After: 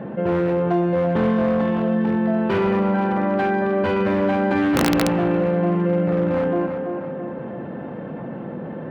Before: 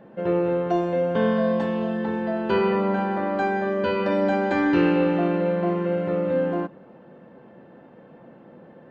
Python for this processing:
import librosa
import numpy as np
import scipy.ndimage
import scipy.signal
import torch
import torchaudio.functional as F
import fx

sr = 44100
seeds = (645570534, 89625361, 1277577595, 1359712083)

p1 = np.minimum(x, 2.0 * 10.0 ** (-19.0 / 20.0) - x)
p2 = fx.bass_treble(p1, sr, bass_db=6, treble_db=-12)
p3 = p2 + fx.echo_tape(p2, sr, ms=335, feedback_pct=44, wet_db=-10.5, lp_hz=2500.0, drive_db=7.0, wow_cents=15, dry=0)
p4 = (np.mod(10.0 ** (9.5 / 20.0) * p3 + 1.0, 2.0) - 1.0) / 10.0 ** (9.5 / 20.0)
p5 = scipy.signal.sosfilt(scipy.signal.butter(2, 72.0, 'highpass', fs=sr, output='sos'), p4)
y = fx.env_flatten(p5, sr, amount_pct=50)